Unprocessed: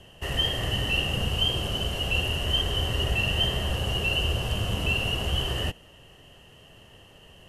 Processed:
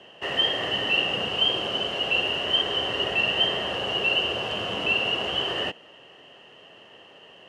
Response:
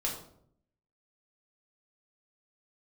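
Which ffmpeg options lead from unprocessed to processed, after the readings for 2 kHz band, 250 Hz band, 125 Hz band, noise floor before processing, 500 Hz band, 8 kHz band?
+4.0 dB, −1.0 dB, −14.0 dB, −52 dBFS, +4.0 dB, −8.0 dB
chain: -af "highpass=320,lowpass=3700,volume=5dB"

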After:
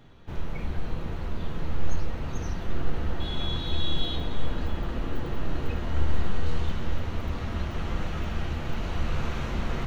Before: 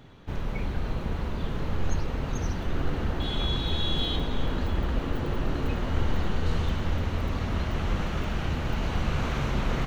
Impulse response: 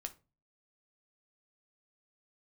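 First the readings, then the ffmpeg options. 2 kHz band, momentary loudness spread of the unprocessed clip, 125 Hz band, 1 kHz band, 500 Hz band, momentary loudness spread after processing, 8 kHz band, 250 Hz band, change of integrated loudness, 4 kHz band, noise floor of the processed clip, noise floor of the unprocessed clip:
−3.0 dB, 5 LU, −2.5 dB, −3.0 dB, −3.0 dB, 5 LU, can't be measured, −3.0 dB, −2.5 dB, −2.5 dB, −34 dBFS, −32 dBFS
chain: -filter_complex "[1:a]atrim=start_sample=2205[link_01];[0:a][link_01]afir=irnorm=-1:irlink=0"

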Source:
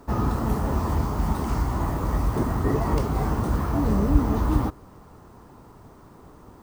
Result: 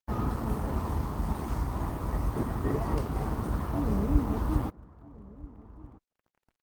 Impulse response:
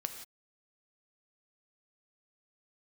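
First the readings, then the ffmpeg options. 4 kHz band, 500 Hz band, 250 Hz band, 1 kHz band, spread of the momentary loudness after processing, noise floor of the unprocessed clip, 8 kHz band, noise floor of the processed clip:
−7.5 dB, −6.5 dB, −6.5 dB, −7.5 dB, 20 LU, −50 dBFS, −7.5 dB, below −85 dBFS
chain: -filter_complex "[0:a]aeval=exprs='sgn(val(0))*max(abs(val(0))-0.0106,0)':channel_layout=same,asplit=2[link_01][link_02];[link_02]adelay=1283,volume=-20dB,highshelf=frequency=4000:gain=-28.9[link_03];[link_01][link_03]amix=inputs=2:normalize=0,volume=-5dB" -ar 48000 -c:a libopus -b:a 32k

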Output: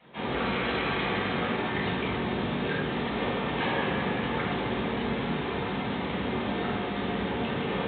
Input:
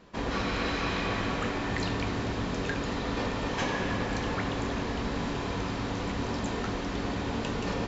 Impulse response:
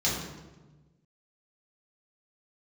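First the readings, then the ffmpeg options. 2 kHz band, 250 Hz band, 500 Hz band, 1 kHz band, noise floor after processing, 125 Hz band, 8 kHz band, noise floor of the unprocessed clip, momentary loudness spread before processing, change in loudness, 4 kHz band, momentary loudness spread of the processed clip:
+3.0 dB, +2.0 dB, +3.0 dB, +2.5 dB, −32 dBFS, −0.5 dB, can't be measured, −33 dBFS, 3 LU, +2.0 dB, +2.0 dB, 3 LU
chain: -filter_complex "[0:a]highpass=93,acrusher=bits=2:mode=log:mix=0:aa=0.000001,lowshelf=frequency=240:gain=-10.5,areverse,acompressor=mode=upward:threshold=-37dB:ratio=2.5,areverse[link_01];[1:a]atrim=start_sample=2205,atrim=end_sample=6174[link_02];[link_01][link_02]afir=irnorm=-1:irlink=0,volume=-6.5dB" -ar 8000 -c:a pcm_mulaw

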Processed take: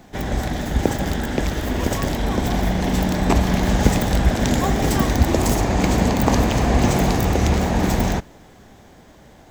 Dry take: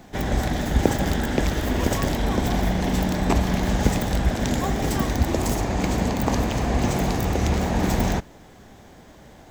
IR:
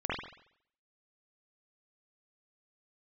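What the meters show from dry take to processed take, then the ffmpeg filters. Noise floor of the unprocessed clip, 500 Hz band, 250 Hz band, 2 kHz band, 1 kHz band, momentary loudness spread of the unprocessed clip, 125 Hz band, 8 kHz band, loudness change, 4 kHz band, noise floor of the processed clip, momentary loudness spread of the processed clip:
−48 dBFS, +3.5 dB, +3.5 dB, +3.0 dB, +3.5 dB, 2 LU, +3.5 dB, +3.5 dB, +3.5 dB, +3.5 dB, −47 dBFS, 6 LU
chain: -af "dynaudnorm=framelen=210:gausssize=21:maxgain=11.5dB"

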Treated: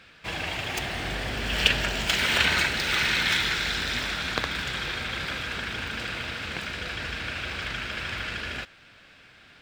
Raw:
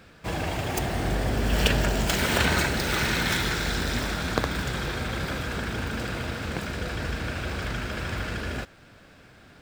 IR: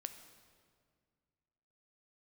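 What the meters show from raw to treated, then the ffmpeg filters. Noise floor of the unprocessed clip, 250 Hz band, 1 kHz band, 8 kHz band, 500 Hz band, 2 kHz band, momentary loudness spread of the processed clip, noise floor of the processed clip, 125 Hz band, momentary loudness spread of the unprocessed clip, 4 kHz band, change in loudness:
−52 dBFS, −7.5 dB, −2.0 dB, −2.5 dB, −6.0 dB, +3.0 dB, 10 LU, −53 dBFS, −8.0 dB, 8 LU, +4.5 dB, +0.5 dB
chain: -af "equalizer=frequency=2800:width_type=o:width=2.3:gain=14,volume=-8dB"

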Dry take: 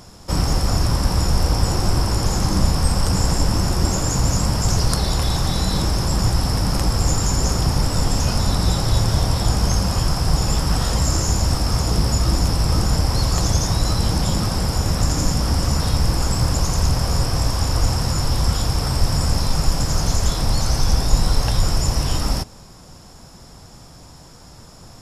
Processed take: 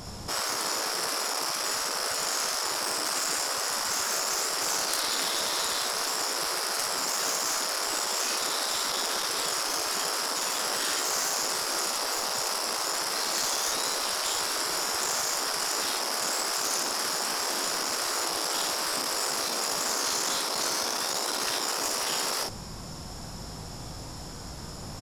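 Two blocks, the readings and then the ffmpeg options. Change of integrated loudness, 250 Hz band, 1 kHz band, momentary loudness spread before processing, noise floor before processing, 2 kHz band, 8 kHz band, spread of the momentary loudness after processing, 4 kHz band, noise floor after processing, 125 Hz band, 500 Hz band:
−6.5 dB, −18.0 dB, −3.5 dB, 2 LU, −43 dBFS, +1.0 dB, −0.5 dB, 4 LU, −2.0 dB, −40 dBFS, −30.5 dB, −6.5 dB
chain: -af "asoftclip=type=tanh:threshold=-17dB,aecho=1:1:19|56:0.355|0.631,afftfilt=real='re*lt(hypot(re,im),0.1)':imag='im*lt(hypot(re,im),0.1)':win_size=1024:overlap=0.75,volume=2dB"

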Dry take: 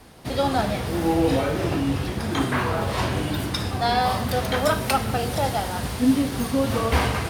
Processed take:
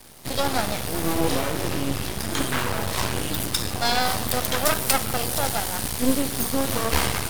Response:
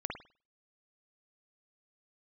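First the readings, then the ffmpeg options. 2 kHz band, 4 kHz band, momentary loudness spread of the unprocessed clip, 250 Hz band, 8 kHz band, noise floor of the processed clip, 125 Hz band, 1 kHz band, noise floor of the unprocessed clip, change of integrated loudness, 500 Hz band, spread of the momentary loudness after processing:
+0.5 dB, +3.0 dB, 5 LU, −4.0 dB, +9.0 dB, −30 dBFS, −4.5 dB, −2.5 dB, −30 dBFS, −0.5 dB, −3.0 dB, 5 LU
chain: -af "aeval=exprs='max(val(0),0)':channel_layout=same,crystalizer=i=2.5:c=0,volume=1dB"

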